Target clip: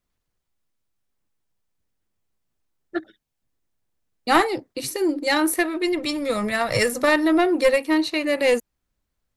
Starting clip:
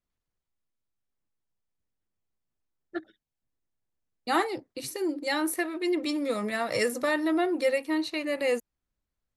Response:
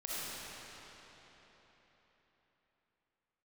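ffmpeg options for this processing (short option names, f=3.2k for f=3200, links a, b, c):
-filter_complex "[0:a]asplit=3[a][b][c];[a]afade=t=out:st=5.85:d=0.02[d];[b]asubboost=boost=11.5:cutoff=83,afade=t=in:st=5.85:d=0.02,afade=t=out:st=6.99:d=0.02[e];[c]afade=t=in:st=6.99:d=0.02[f];[d][e][f]amix=inputs=3:normalize=0,aeval=exprs='0.237*(cos(1*acos(clip(val(0)/0.237,-1,1)))-cos(1*PI/2))+0.0668*(cos(2*acos(clip(val(0)/0.237,-1,1)))-cos(2*PI/2))+0.00596*(cos(8*acos(clip(val(0)/0.237,-1,1)))-cos(8*PI/2))':c=same,volume=7.5dB"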